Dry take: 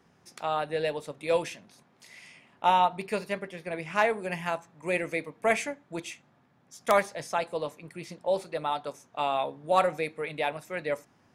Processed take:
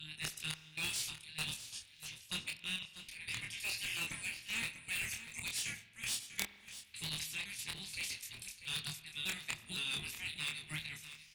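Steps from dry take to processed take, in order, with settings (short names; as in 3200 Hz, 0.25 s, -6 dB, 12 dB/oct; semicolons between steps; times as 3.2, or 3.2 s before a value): slices in reverse order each 0.257 s, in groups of 3; spectral gate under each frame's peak -15 dB weak; EQ curve 120 Hz 0 dB, 590 Hz -24 dB, 1200 Hz -22 dB, 2500 Hz +3 dB; reverse; compressor 10:1, threshold -43 dBFS, peak gain reduction 14 dB; reverse; step gate ".xxxxxx.x" 87 bpm -12 dB; added harmonics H 7 -11 dB, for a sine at -23.5 dBFS; doubler 26 ms -4 dB; on a send: echo 0.643 s -12.5 dB; on the sum: spring tank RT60 1.3 s, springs 45 ms, chirp 25 ms, DRR 14 dB; gain +10 dB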